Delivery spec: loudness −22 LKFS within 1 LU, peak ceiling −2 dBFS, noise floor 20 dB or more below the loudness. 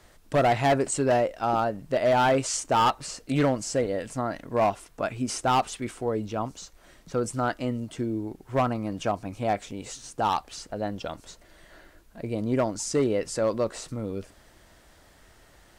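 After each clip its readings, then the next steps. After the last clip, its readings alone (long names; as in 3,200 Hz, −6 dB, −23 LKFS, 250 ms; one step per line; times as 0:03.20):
share of clipped samples 1.2%; peaks flattened at −17.0 dBFS; integrated loudness −27.0 LKFS; sample peak −17.0 dBFS; target loudness −22.0 LKFS
→ clipped peaks rebuilt −17 dBFS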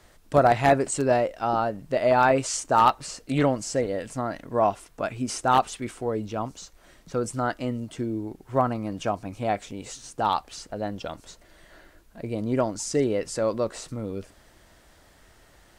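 share of clipped samples 0.0%; integrated loudness −26.0 LKFS; sample peak −8.0 dBFS; target loudness −22.0 LKFS
→ level +4 dB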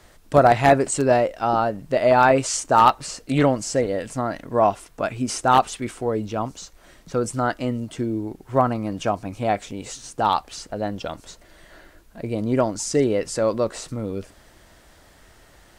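integrated loudness −22.0 LKFS; sample peak −4.0 dBFS; background noise floor −53 dBFS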